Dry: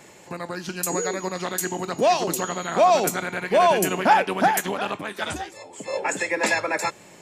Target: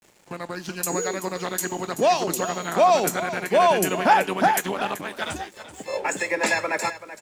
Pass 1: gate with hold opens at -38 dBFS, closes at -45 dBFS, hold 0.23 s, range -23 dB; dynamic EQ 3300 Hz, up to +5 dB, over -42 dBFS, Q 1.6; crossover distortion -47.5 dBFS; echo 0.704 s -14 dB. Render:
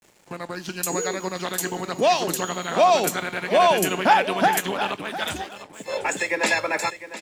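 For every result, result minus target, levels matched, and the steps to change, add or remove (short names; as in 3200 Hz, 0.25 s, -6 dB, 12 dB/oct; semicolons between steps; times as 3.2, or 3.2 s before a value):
echo 0.322 s late; 4000 Hz band +3.0 dB
change: echo 0.382 s -14 dB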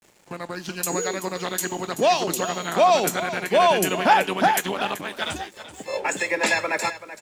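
4000 Hz band +3.0 dB
remove: dynamic EQ 3300 Hz, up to +5 dB, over -42 dBFS, Q 1.6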